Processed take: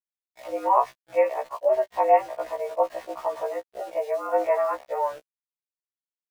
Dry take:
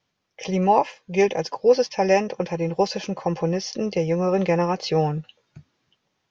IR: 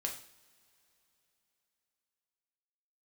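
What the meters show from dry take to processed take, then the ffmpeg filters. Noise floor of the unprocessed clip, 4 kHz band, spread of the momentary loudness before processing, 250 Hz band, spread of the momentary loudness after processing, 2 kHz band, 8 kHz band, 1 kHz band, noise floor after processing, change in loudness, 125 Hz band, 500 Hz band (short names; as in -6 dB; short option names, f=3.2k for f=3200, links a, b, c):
-75 dBFS, under -15 dB, 8 LU, -18.5 dB, 11 LU, -6.5 dB, n/a, +0.5 dB, under -85 dBFS, -3.0 dB, under -35 dB, -3.0 dB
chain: -af "highpass=f=310:t=q:w=0.5412,highpass=f=310:t=q:w=1.307,lowpass=f=2k:t=q:w=0.5176,lowpass=f=2k:t=q:w=0.7071,lowpass=f=2k:t=q:w=1.932,afreqshift=130,aeval=exprs='val(0)*gte(abs(val(0)),0.0106)':c=same,afftfilt=real='re*1.73*eq(mod(b,3),0)':imag='im*1.73*eq(mod(b,3),0)':win_size=2048:overlap=0.75"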